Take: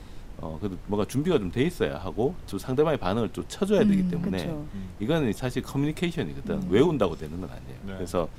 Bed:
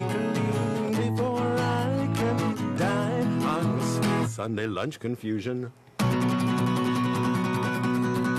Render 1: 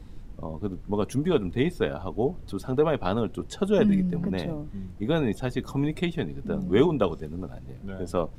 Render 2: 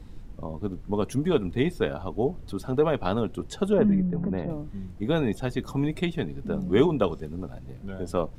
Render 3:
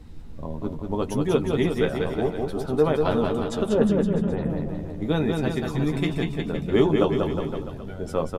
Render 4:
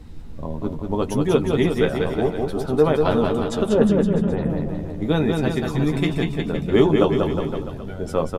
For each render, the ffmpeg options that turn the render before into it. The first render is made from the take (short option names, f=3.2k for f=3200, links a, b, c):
-af "afftdn=nr=9:nf=-42"
-filter_complex "[0:a]asettb=1/sr,asplit=3[a][b][c];[a]atrim=end=3.734[d];[b]atrim=start=3.73:end=4.5,asetpts=PTS-STARTPTS,afade=t=in:d=0.004:c=qsin,afade=t=out:st=0.766:d=0.004:c=qsin,lowpass=1.5k[e];[c]atrim=start=4.496[f];[d][e]acrossfade=d=0.004:c1=hsin:c2=qsin[g];[g][f]acrossfade=d=0.004:c1=qsin:c2=hsin"
-filter_complex "[0:a]asplit=2[a][b];[b]adelay=13,volume=-7dB[c];[a][c]amix=inputs=2:normalize=0,aecho=1:1:190|361|514.9|653.4|778.1:0.631|0.398|0.251|0.158|0.1"
-af "volume=3.5dB"